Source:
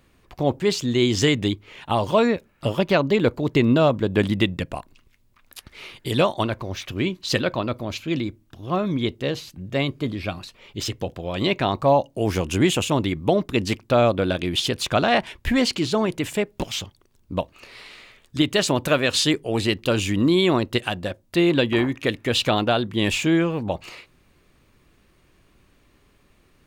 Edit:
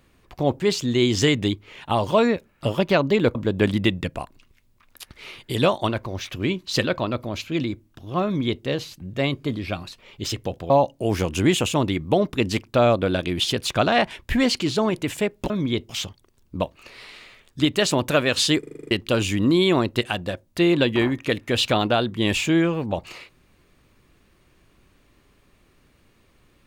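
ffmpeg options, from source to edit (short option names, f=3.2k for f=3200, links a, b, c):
-filter_complex "[0:a]asplit=13[a][b][c][d][e][f][g][h][i][j][k][l][m];[a]atrim=end=3.352[n];[b]atrim=start=3.908:end=11.262[o];[c]atrim=start=11.858:end=16.662[p];[d]atrim=start=8.808:end=9.202[q];[e]atrim=start=16.658:end=19.402[r];[f]atrim=start=19.358:end=19.402[s];[g]atrim=start=19.358:end=19.402[t];[h]atrim=start=19.358:end=19.402[u];[i]atrim=start=19.358:end=19.402[v];[j]atrim=start=19.358:end=19.402[w];[k]atrim=start=19.358:end=19.402[x];[l]atrim=start=19.358:end=19.402[y];[m]atrim=start=19.678[z];[n][o]acrossfade=d=0.004:c1=hsin:c2=hsin[aa];[aa][p]acrossfade=d=0.004:c1=hsin:c2=hsin[ab];[ab][q]acrossfade=d=0.004:c1=hsin:c2=hsin[ac];[ac][r]acrossfade=d=0.004:c1=hsin:c2=hsin[ad];[ad][s]acrossfade=d=0.004:c1=hsin:c2=hsin[ae];[ae][t]acrossfade=d=0.004:c1=hsin:c2=hsin[af];[af][u]acrossfade=d=0.004:c1=hsin:c2=hsin[ag];[ag][v]acrossfade=d=0.004:c1=hsin:c2=hsin[ah];[ah][w]acrossfade=d=0.004:c1=hsin:c2=hsin[ai];[ai][x]acrossfade=d=0.004:c1=hsin:c2=hsin[aj];[aj][y]acrossfade=d=0.004:c1=hsin:c2=hsin[ak];[ak][z]acrossfade=d=0.004:c1=hsin:c2=hsin"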